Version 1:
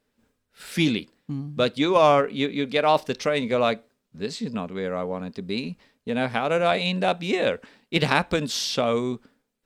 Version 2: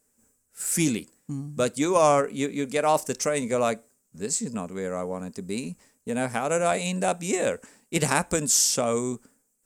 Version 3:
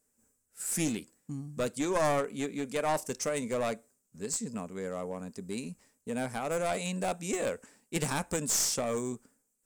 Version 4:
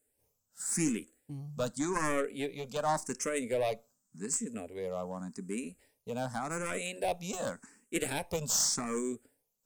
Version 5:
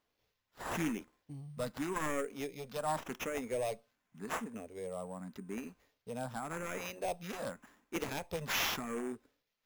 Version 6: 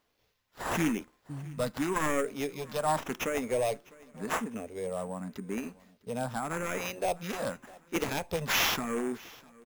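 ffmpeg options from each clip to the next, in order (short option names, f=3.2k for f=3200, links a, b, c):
-af "highshelf=f=5.4k:t=q:w=3:g=13.5,volume=-2dB"
-af "aeval=exprs='clip(val(0),-1,0.0841)':c=same,volume=-6dB"
-filter_complex "[0:a]asplit=2[a][b];[b]afreqshift=0.87[c];[a][c]amix=inputs=2:normalize=1,volume=1.5dB"
-af "acrusher=samples=5:mix=1:aa=0.000001,volume=-4.5dB"
-af "aecho=1:1:653|1306|1959:0.0708|0.0326|0.015,volume=6.5dB"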